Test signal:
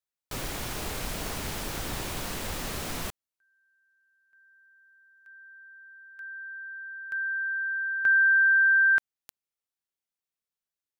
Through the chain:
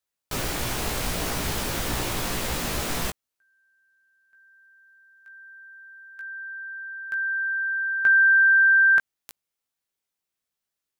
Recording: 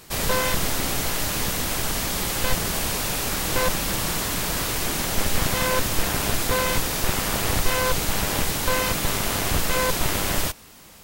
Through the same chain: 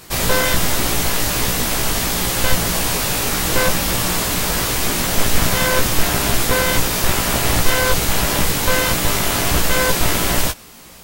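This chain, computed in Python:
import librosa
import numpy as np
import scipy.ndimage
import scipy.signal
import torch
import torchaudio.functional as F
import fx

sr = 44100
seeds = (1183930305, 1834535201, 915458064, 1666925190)

y = fx.doubler(x, sr, ms=17.0, db=-5.0)
y = y * 10.0 ** (5.0 / 20.0)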